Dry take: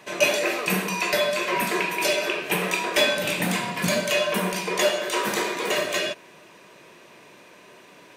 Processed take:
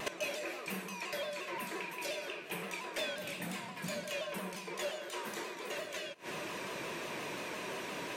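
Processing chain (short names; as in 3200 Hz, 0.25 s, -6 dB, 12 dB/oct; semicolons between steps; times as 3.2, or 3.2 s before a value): flipped gate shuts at -24 dBFS, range -24 dB; soft clip -37 dBFS, distortion -18 dB; shaped vibrato saw down 5.7 Hz, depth 100 cents; gain +8.5 dB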